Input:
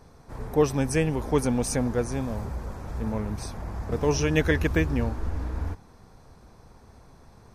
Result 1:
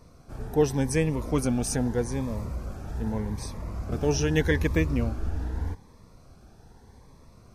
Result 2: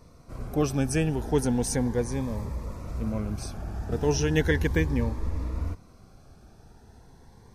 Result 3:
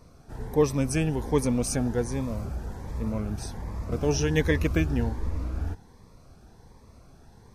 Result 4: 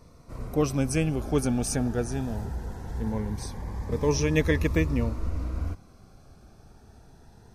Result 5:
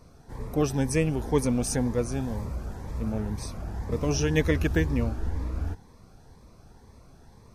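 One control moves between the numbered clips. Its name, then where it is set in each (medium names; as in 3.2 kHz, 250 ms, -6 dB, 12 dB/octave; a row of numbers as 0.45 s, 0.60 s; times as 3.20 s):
Shepard-style phaser, rate: 0.82 Hz, 0.36 Hz, 1.3 Hz, 0.2 Hz, 2 Hz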